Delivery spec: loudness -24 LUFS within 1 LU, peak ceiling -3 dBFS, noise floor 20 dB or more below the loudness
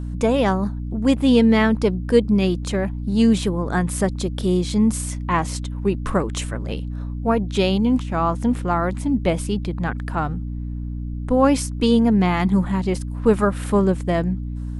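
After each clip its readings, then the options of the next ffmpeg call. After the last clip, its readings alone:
hum 60 Hz; harmonics up to 300 Hz; hum level -25 dBFS; loudness -21.0 LUFS; peak -3.5 dBFS; loudness target -24.0 LUFS
-> -af "bandreject=f=60:t=h:w=4,bandreject=f=120:t=h:w=4,bandreject=f=180:t=h:w=4,bandreject=f=240:t=h:w=4,bandreject=f=300:t=h:w=4"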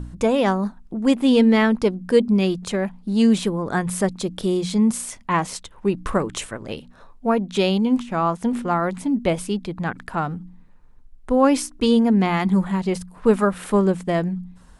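hum none; loudness -21.0 LUFS; peak -4.5 dBFS; loudness target -24.0 LUFS
-> -af "volume=-3dB"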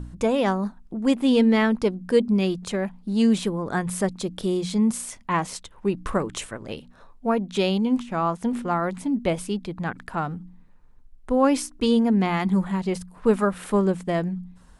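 loudness -24.0 LUFS; peak -7.5 dBFS; noise floor -50 dBFS

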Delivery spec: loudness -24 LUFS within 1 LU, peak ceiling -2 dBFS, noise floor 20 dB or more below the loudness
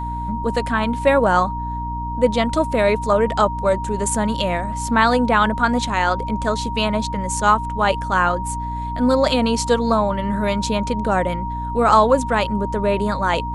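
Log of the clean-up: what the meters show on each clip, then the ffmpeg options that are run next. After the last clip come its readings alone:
hum 60 Hz; harmonics up to 300 Hz; hum level -26 dBFS; steady tone 940 Hz; tone level -26 dBFS; loudness -19.5 LUFS; peak -2.5 dBFS; loudness target -24.0 LUFS
-> -af "bandreject=f=60:t=h:w=4,bandreject=f=120:t=h:w=4,bandreject=f=180:t=h:w=4,bandreject=f=240:t=h:w=4,bandreject=f=300:t=h:w=4"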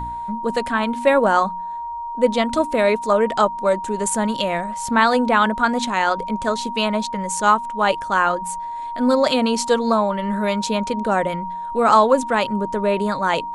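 hum none; steady tone 940 Hz; tone level -26 dBFS
-> -af "bandreject=f=940:w=30"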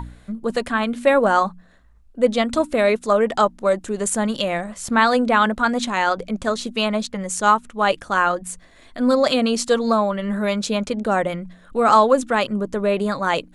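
steady tone none; loudness -20.0 LUFS; peak -2.0 dBFS; loudness target -24.0 LUFS
-> -af "volume=-4dB"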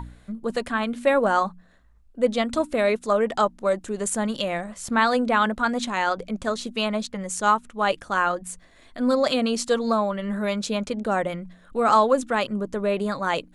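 loudness -24.0 LUFS; peak -6.0 dBFS; noise floor -54 dBFS

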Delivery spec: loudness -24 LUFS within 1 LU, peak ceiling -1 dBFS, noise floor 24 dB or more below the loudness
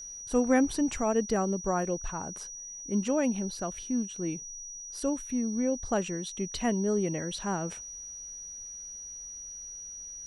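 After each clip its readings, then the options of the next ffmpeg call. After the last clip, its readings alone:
steady tone 5800 Hz; tone level -40 dBFS; loudness -31.5 LUFS; peak -12.5 dBFS; loudness target -24.0 LUFS
-> -af "bandreject=f=5.8k:w=30"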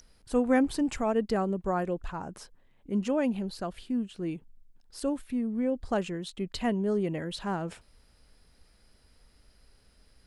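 steady tone none; loudness -30.5 LUFS; peak -13.0 dBFS; loudness target -24.0 LUFS
-> -af "volume=6.5dB"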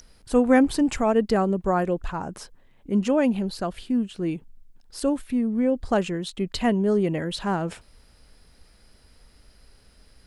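loudness -24.0 LUFS; peak -6.5 dBFS; noise floor -57 dBFS

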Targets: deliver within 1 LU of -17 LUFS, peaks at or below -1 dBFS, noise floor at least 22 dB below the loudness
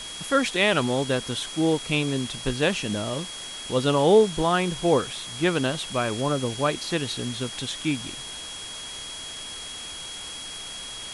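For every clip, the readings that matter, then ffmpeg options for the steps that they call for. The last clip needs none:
steady tone 3300 Hz; tone level -37 dBFS; noise floor -37 dBFS; noise floor target -48 dBFS; loudness -25.5 LUFS; peak -7.5 dBFS; loudness target -17.0 LUFS
-> -af "bandreject=f=3.3k:w=30"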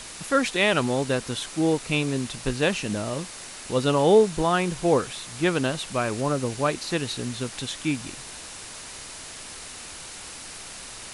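steady tone none; noise floor -40 dBFS; noise floor target -47 dBFS
-> -af "afftdn=nr=7:nf=-40"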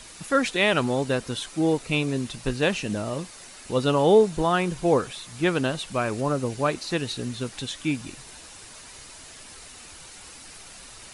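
noise floor -45 dBFS; noise floor target -47 dBFS
-> -af "afftdn=nr=6:nf=-45"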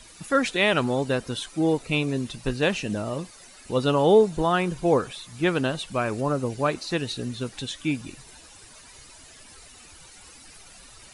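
noise floor -49 dBFS; loudness -25.0 LUFS; peak -8.0 dBFS; loudness target -17.0 LUFS
-> -af "volume=8dB,alimiter=limit=-1dB:level=0:latency=1"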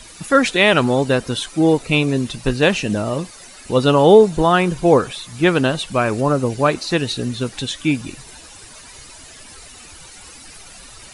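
loudness -17.0 LUFS; peak -1.0 dBFS; noise floor -41 dBFS

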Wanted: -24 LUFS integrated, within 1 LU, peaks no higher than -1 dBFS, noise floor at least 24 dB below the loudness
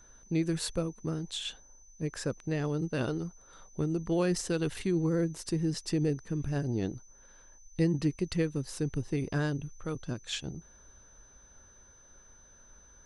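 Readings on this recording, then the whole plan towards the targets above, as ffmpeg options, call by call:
steady tone 6100 Hz; tone level -57 dBFS; loudness -32.5 LUFS; peak -17.0 dBFS; loudness target -24.0 LUFS
-> -af "bandreject=f=6.1k:w=30"
-af "volume=8.5dB"

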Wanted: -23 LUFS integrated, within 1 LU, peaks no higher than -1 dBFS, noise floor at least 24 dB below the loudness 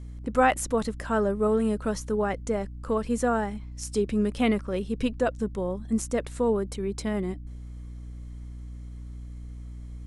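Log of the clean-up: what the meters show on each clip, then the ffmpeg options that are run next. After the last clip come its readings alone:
hum 60 Hz; harmonics up to 300 Hz; hum level -37 dBFS; loudness -27.5 LUFS; peak -9.5 dBFS; loudness target -23.0 LUFS
-> -af "bandreject=f=60:t=h:w=4,bandreject=f=120:t=h:w=4,bandreject=f=180:t=h:w=4,bandreject=f=240:t=h:w=4,bandreject=f=300:t=h:w=4"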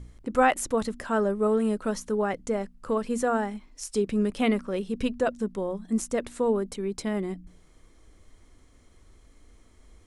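hum none; loudness -28.0 LUFS; peak -9.5 dBFS; loudness target -23.0 LUFS
-> -af "volume=5dB"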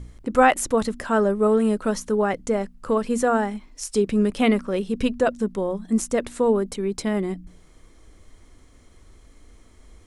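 loudness -23.0 LUFS; peak -4.5 dBFS; noise floor -52 dBFS

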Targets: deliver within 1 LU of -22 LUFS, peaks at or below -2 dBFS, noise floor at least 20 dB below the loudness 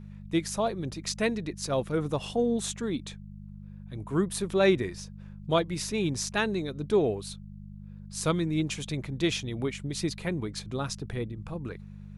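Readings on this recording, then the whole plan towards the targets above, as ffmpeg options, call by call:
hum 50 Hz; harmonics up to 200 Hz; hum level -41 dBFS; loudness -30.0 LUFS; peak -11.5 dBFS; loudness target -22.0 LUFS
-> -af "bandreject=f=50:t=h:w=4,bandreject=f=100:t=h:w=4,bandreject=f=150:t=h:w=4,bandreject=f=200:t=h:w=4"
-af "volume=8dB"

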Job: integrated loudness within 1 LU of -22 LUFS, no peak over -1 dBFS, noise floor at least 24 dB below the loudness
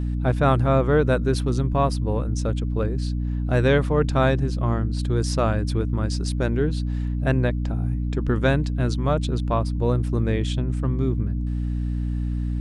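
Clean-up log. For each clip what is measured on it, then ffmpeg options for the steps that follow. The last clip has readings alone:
hum 60 Hz; harmonics up to 300 Hz; hum level -22 dBFS; loudness -23.5 LUFS; peak -7.0 dBFS; loudness target -22.0 LUFS
-> -af "bandreject=f=60:t=h:w=6,bandreject=f=120:t=h:w=6,bandreject=f=180:t=h:w=6,bandreject=f=240:t=h:w=6,bandreject=f=300:t=h:w=6"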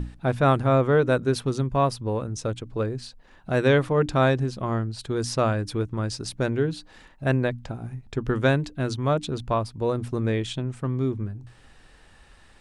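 hum none; loudness -25.0 LUFS; peak -8.5 dBFS; loudness target -22.0 LUFS
-> -af "volume=3dB"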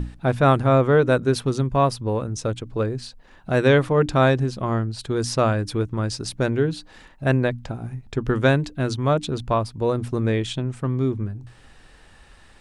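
loudness -22.0 LUFS; peak -5.5 dBFS; noise floor -50 dBFS

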